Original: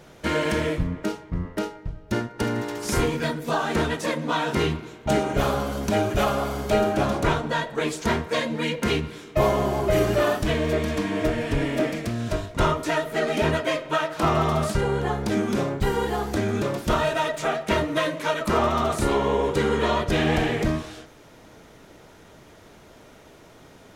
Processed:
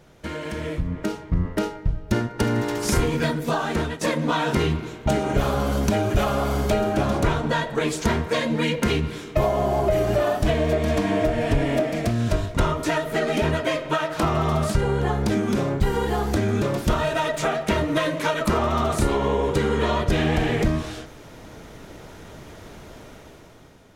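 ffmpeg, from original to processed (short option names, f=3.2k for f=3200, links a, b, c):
-filter_complex "[0:a]asettb=1/sr,asplit=3[a][b][c];[a]atrim=end=9.444[d];[b]atrim=start=9.44:end=12.11,asetpts=PTS-STARTPTS,afade=t=in:d=0.004:c=qsin,afade=t=out:st=2.666:d=0.004:c=qsin,equalizer=f=690:w=3.1:g=8.5[e];[c]atrim=start=12.106[f];[d][e]acrossfade=d=0.004:c1=hsin:c2=qsin[g];[g][f]acrossfade=d=0.004:c1=qsin:c2=hsin,asplit=2[h][i];[h]atrim=end=4.01,asetpts=PTS-STARTPTS,afade=t=out:st=3.32:d=0.69:silence=0.223872[j];[i]atrim=start=4.01,asetpts=PTS-STARTPTS,afade=t=in:d=0.004:c=hsin:silence=0.223872[k];[j][k]concat=n=2:v=0:a=1,acompressor=threshold=-24dB:ratio=6,lowshelf=f=140:g=6.5,dynaudnorm=f=270:g=7:m=11.5dB,volume=-5.5dB"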